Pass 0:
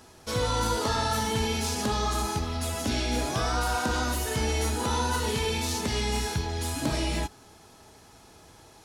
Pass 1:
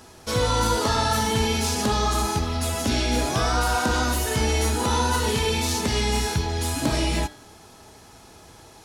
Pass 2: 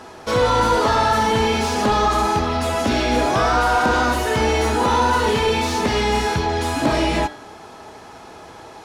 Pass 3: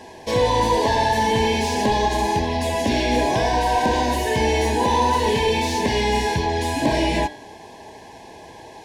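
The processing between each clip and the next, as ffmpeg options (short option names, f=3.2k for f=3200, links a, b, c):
-af "bandreject=f=150.2:t=h:w=4,bandreject=f=300.4:t=h:w=4,bandreject=f=450.6:t=h:w=4,bandreject=f=600.8:t=h:w=4,bandreject=f=751:t=h:w=4,bandreject=f=901.2:t=h:w=4,bandreject=f=1.0514k:t=h:w=4,bandreject=f=1.2016k:t=h:w=4,bandreject=f=1.3518k:t=h:w=4,bandreject=f=1.502k:t=h:w=4,bandreject=f=1.6522k:t=h:w=4,bandreject=f=1.8024k:t=h:w=4,bandreject=f=1.9526k:t=h:w=4,bandreject=f=2.1028k:t=h:w=4,bandreject=f=2.253k:t=h:w=4,bandreject=f=2.4032k:t=h:w=4,bandreject=f=2.5534k:t=h:w=4,bandreject=f=2.7036k:t=h:w=4,bandreject=f=2.8538k:t=h:w=4,bandreject=f=3.004k:t=h:w=4,bandreject=f=3.1542k:t=h:w=4,bandreject=f=3.3044k:t=h:w=4,bandreject=f=3.4546k:t=h:w=4,bandreject=f=3.6048k:t=h:w=4,bandreject=f=3.755k:t=h:w=4,bandreject=f=3.9052k:t=h:w=4,bandreject=f=4.0554k:t=h:w=4,bandreject=f=4.2056k:t=h:w=4,bandreject=f=4.3558k:t=h:w=4,bandreject=f=4.506k:t=h:w=4,bandreject=f=4.6562k:t=h:w=4,bandreject=f=4.8064k:t=h:w=4,volume=5dB"
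-filter_complex "[0:a]asplit=2[a][b];[b]highpass=f=720:p=1,volume=17dB,asoftclip=type=tanh:threshold=-9.5dB[c];[a][c]amix=inputs=2:normalize=0,lowpass=f=1k:p=1,volume=-6dB,volume=4dB"
-af "asuperstop=centerf=1300:order=12:qfactor=2.7,volume=-1dB"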